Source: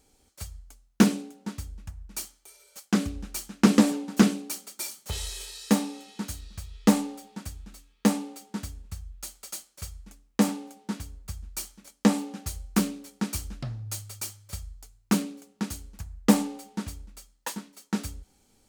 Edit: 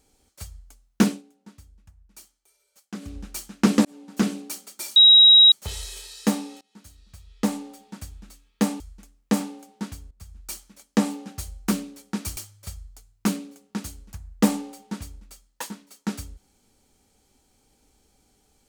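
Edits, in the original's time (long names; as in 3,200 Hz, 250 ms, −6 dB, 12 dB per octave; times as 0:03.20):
0:01.07–0:03.16: duck −12.5 dB, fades 0.15 s
0:03.85–0:04.40: fade in
0:04.96: insert tone 3,830 Hz −8.5 dBFS 0.56 s
0:06.05–0:07.52: fade in, from −23.5 dB
0:08.24–0:09.88: remove
0:11.19–0:11.63: fade in linear, from −14 dB
0:13.45–0:14.23: remove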